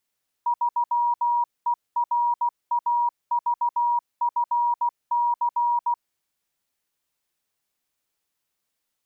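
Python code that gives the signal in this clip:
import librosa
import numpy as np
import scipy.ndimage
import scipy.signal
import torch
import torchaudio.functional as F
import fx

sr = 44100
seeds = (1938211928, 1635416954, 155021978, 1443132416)

y = fx.morse(sr, text='3ERAVFC', wpm=16, hz=955.0, level_db=-19.0)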